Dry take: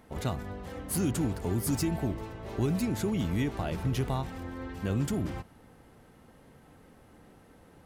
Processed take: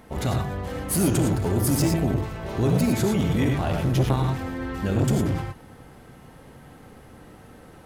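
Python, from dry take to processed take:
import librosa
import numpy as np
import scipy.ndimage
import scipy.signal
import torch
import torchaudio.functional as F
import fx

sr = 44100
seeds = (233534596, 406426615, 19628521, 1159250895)

y = fx.rev_gated(x, sr, seeds[0], gate_ms=130, shape='rising', drr_db=2.5)
y = fx.transformer_sat(y, sr, knee_hz=400.0)
y = y * 10.0 ** (7.5 / 20.0)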